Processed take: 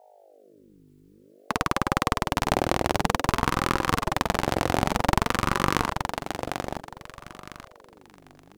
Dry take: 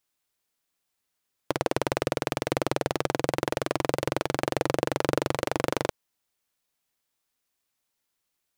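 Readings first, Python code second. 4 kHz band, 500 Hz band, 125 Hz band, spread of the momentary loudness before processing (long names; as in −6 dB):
+4.5 dB, −1.5 dB, +5.0 dB, 2 LU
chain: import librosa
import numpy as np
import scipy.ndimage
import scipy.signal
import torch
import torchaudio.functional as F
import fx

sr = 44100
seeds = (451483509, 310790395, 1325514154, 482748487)

y = fx.add_hum(x, sr, base_hz=50, snr_db=26)
y = fx.echo_thinned(y, sr, ms=875, feedback_pct=28, hz=240.0, wet_db=-5)
y = fx.ring_lfo(y, sr, carrier_hz=440.0, swing_pct=55, hz=0.54)
y = F.gain(torch.from_numpy(y), 5.5).numpy()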